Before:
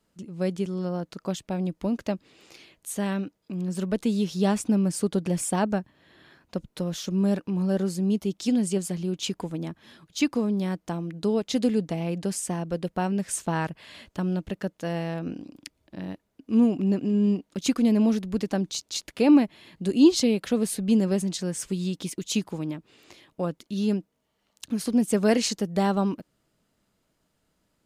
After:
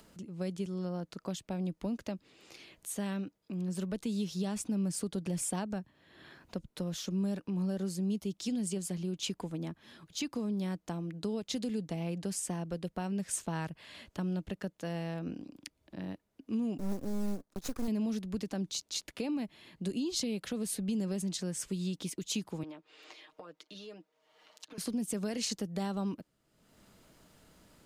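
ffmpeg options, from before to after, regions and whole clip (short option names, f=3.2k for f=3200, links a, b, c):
-filter_complex "[0:a]asettb=1/sr,asplit=3[a][b][c];[a]atrim=end=16.784[d];[b]atrim=start=16.78:end=17.88,asetpts=PTS-STARTPTS,afade=t=in:d=0.004:c=qsin,afade=t=out:st=1.096:d=0.004:c=qsin,acrusher=bits=5:mode=log:mix=0:aa=0.000001,equalizer=f=2.7k:t=o:w=0.75:g=-13,aeval=exprs='max(val(0),0)':c=same[e];[c]atrim=start=17.876[f];[d][e]acrossfade=d=0.004:c1=hsin:c2=qsin[g];[g][f]acrossfade=d=0.004:c1=qsin:c2=hsin,asettb=1/sr,asplit=3[h][i][j];[h]atrim=end=22.634[k];[i]atrim=start=22.63:end=24.78,asetpts=PTS-STARTPTS,afade=t=in:d=0.004:c=qsin,afade=t=out:st=2.146:d=0.004:c=qsin,acrossover=split=380 5900:gain=0.0794 1 0.224[l][m][n];[l][m][n]amix=inputs=3:normalize=0,acompressor=threshold=-40dB:ratio=6:attack=3.2:release=140:knee=1:detection=peak,aecho=1:1:6.5:0.7,atrim=end_sample=94815[o];[j]atrim=start=24.776[p];[k][o]acrossfade=d=0.004:c1=hsin:c2=qsin[q];[q][p]acrossfade=d=0.004:c1=qsin:c2=hsin,acompressor=mode=upward:threshold=-41dB:ratio=2.5,alimiter=limit=-17dB:level=0:latency=1:release=64,acrossover=split=170|3000[r][s][t];[s]acompressor=threshold=-32dB:ratio=2.5[u];[r][u][t]amix=inputs=3:normalize=0,volume=-5dB"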